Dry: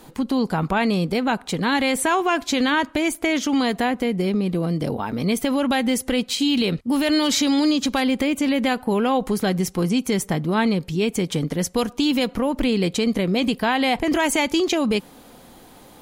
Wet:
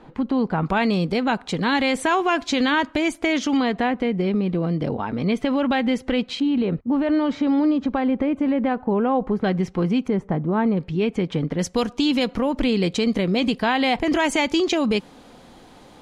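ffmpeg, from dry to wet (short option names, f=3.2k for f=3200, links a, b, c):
-af "asetnsamples=n=441:p=0,asendcmd='0.66 lowpass f 5900;3.57 lowpass f 3100;6.4 lowpass f 1300;9.44 lowpass f 2600;10.08 lowpass f 1200;10.77 lowpass f 2500;11.59 lowpass f 6400',lowpass=2.3k"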